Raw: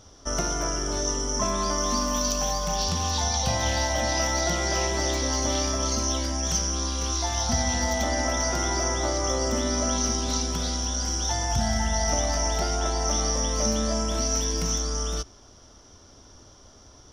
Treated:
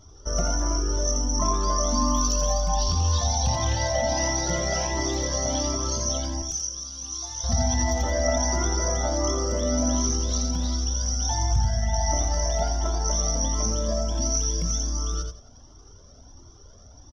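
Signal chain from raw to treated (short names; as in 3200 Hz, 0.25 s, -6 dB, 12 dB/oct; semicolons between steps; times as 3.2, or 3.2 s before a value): formant sharpening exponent 1.5; 6.42–7.44 pre-emphasis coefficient 0.8; on a send: feedback echo 85 ms, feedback 22%, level -5 dB; on the sum: cascading flanger rising 1.4 Hz; gain +4 dB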